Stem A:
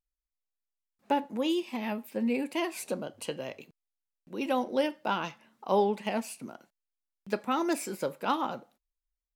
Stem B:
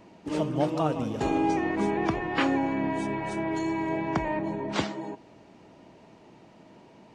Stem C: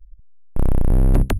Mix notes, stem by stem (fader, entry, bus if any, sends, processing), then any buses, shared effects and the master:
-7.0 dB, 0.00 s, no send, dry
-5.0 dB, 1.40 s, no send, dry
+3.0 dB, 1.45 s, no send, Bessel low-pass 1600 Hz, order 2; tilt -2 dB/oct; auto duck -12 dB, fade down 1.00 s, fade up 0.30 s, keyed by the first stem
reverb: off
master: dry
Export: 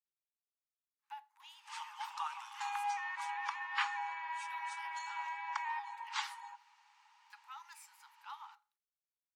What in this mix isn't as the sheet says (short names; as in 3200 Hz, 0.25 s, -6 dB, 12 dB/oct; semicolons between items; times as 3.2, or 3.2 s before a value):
stem A -7.0 dB -> -17.5 dB; master: extra Chebyshev high-pass 820 Hz, order 10